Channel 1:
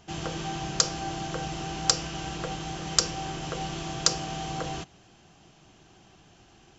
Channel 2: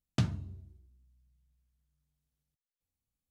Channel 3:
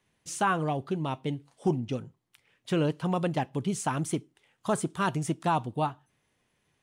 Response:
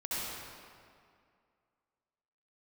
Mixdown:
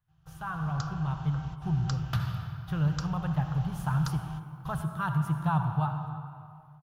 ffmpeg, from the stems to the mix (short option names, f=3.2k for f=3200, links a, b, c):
-filter_complex "[0:a]volume=-7.5dB[a];[1:a]highpass=f=850:p=1,acontrast=49,adelay=1950,volume=0.5dB,asplit=3[b][c][d];[b]atrim=end=2.66,asetpts=PTS-STARTPTS,afade=t=out:st=2.656:d=0.004:c=hsin[e];[c]atrim=start=2.66:end=3.35,asetpts=PTS-STARTPTS,volume=0[f];[d]atrim=start=3.35,asetpts=PTS-STARTPTS,afade=t=in:d=0.004:c=hsin[g];[e][f][g]concat=n=3:v=0:a=1,asplit=2[h][i];[i]volume=-4.5dB[j];[2:a]volume=-3.5dB,asplit=3[k][l][m];[l]volume=-9dB[n];[m]apad=whole_len=299160[o];[a][o]sidechaingate=range=-19dB:threshold=-57dB:ratio=16:detection=peak[p];[3:a]atrim=start_sample=2205[q];[j][n]amix=inputs=2:normalize=0[r];[r][q]afir=irnorm=-1:irlink=0[s];[p][h][k][s]amix=inputs=4:normalize=0,dynaudnorm=f=450:g=3:m=10dB,firequalizer=gain_entry='entry(150,0);entry(220,-23);entry(390,-26);entry(800,-13);entry(1400,-7);entry(2100,-20);entry(3500,-17);entry(8100,-28);entry(12000,-4)':delay=0.05:min_phase=1"